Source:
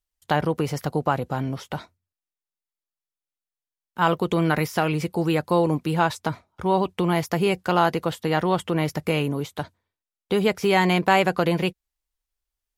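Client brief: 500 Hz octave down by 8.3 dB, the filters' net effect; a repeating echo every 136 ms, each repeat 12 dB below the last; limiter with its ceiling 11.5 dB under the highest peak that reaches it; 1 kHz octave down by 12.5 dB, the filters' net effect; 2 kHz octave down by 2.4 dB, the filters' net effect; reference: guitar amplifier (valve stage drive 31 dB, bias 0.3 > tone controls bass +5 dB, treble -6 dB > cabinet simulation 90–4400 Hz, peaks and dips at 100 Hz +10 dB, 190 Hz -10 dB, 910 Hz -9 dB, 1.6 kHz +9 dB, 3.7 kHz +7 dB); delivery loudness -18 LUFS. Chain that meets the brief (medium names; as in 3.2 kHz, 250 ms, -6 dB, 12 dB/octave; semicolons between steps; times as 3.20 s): peaking EQ 500 Hz -9 dB; peaking EQ 1 kHz -8.5 dB; peaking EQ 2 kHz -5.5 dB; peak limiter -25.5 dBFS; feedback delay 136 ms, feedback 25%, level -12 dB; valve stage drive 31 dB, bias 0.3; tone controls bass +5 dB, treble -6 dB; cabinet simulation 90–4400 Hz, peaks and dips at 100 Hz +10 dB, 190 Hz -10 dB, 910 Hz -9 dB, 1.6 kHz +9 dB, 3.7 kHz +7 dB; trim +19.5 dB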